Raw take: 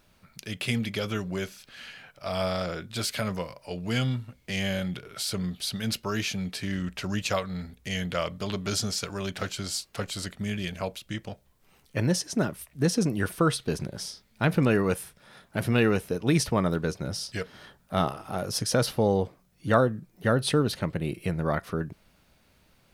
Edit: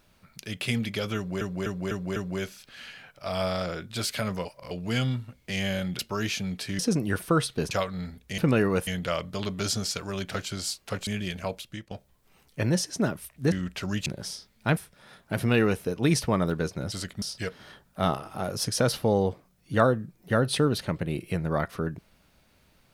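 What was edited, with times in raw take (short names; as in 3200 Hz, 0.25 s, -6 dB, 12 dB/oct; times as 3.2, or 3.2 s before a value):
1.16–1.41 loop, 5 plays
3.45–3.71 reverse
4.99–5.93 cut
6.73–7.27 swap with 12.89–13.81
10.14–10.44 move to 17.16
10.99–11.28 fade out, to -14 dB
14.52–15.01 move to 7.94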